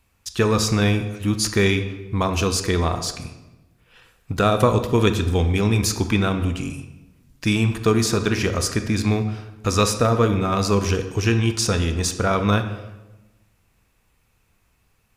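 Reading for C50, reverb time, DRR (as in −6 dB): 9.5 dB, 1.0 s, 7.5 dB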